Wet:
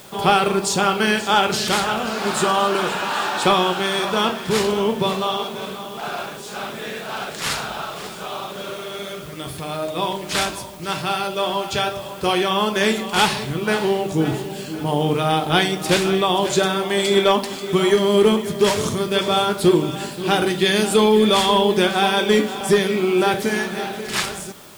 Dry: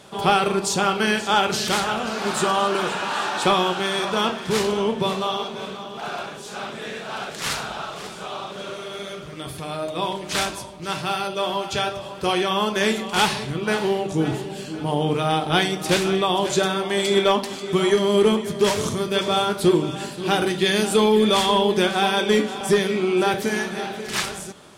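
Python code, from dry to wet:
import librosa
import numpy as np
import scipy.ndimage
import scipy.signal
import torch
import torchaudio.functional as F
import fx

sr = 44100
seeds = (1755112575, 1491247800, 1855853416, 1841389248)

p1 = fx.notch(x, sr, hz=6000.0, q=29.0)
p2 = fx.quant_dither(p1, sr, seeds[0], bits=6, dither='triangular')
y = p1 + (p2 * 10.0 ** (-10.5 / 20.0))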